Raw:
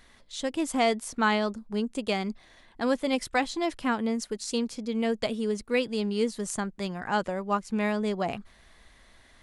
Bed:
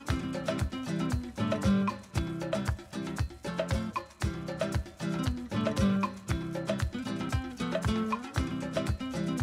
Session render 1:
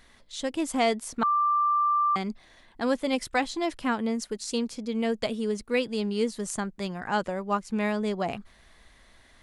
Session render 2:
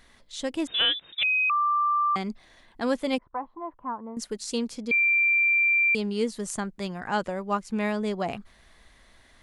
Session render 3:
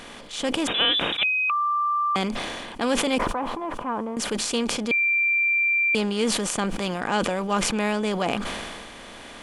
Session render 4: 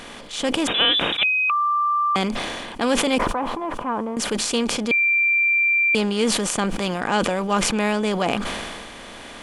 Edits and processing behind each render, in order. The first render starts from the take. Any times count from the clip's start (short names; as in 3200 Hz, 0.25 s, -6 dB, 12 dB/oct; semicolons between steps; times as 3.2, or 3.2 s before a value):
1.23–2.16 bleep 1180 Hz -20.5 dBFS
0.67–1.5 inverted band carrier 3700 Hz; 3.18–4.17 ladder low-pass 1100 Hz, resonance 75%; 4.91–5.95 bleep 2360 Hz -18.5 dBFS
per-bin compression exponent 0.6; sustainer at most 28 dB/s
gain +3 dB; limiter -2 dBFS, peak gain reduction 1 dB